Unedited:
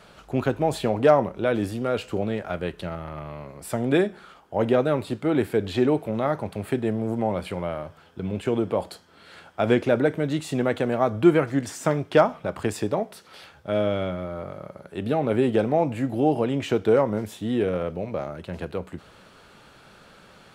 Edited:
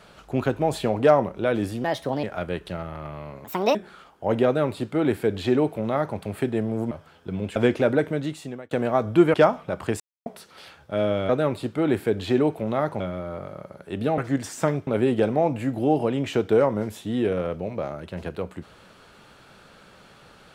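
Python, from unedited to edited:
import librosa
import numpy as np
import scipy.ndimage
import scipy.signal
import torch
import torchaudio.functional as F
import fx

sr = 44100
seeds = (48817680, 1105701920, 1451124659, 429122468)

y = fx.edit(x, sr, fx.speed_span(start_s=1.84, length_s=0.52, speed=1.32),
    fx.speed_span(start_s=3.57, length_s=0.48, speed=1.57),
    fx.duplicate(start_s=4.76, length_s=1.71, to_s=14.05),
    fx.cut(start_s=7.21, length_s=0.61),
    fx.cut(start_s=8.47, length_s=1.16),
    fx.fade_out_span(start_s=10.15, length_s=0.63),
    fx.move(start_s=11.41, length_s=0.69, to_s=15.23),
    fx.silence(start_s=12.76, length_s=0.26), tone=tone)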